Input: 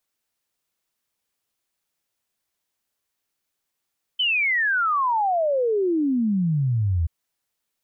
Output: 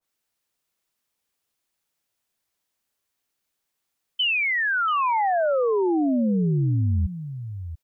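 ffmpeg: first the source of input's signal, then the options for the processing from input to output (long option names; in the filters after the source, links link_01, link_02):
-f lavfi -i "aevalsrc='0.119*clip(min(t,2.88-t)/0.01,0,1)*sin(2*PI*3100*2.88/log(78/3100)*(exp(log(78/3100)*t/2.88)-1))':duration=2.88:sample_rate=44100"
-af "aecho=1:1:686:0.266,adynamicequalizer=threshold=0.0224:dfrequency=1800:dqfactor=0.7:tfrequency=1800:tqfactor=0.7:attack=5:release=100:ratio=0.375:range=3:mode=cutabove:tftype=highshelf"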